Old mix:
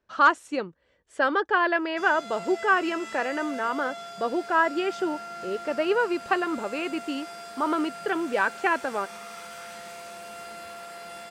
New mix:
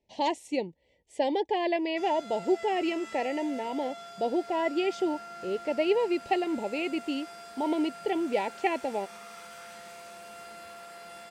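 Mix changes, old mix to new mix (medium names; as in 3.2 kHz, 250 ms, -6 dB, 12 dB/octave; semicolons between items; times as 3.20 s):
speech: add Chebyshev band-stop 900–2000 Hz, order 3; background -5.0 dB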